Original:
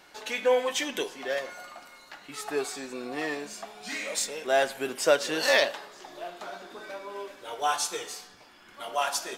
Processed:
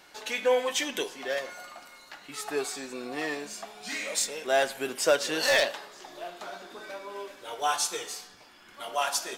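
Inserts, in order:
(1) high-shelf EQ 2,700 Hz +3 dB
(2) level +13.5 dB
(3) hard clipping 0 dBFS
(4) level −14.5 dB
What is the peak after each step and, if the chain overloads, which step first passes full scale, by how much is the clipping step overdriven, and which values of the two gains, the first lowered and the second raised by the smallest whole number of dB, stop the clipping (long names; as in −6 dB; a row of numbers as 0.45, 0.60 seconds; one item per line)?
−5.5, +8.0, 0.0, −14.5 dBFS
step 2, 8.0 dB
step 2 +5.5 dB, step 4 −6.5 dB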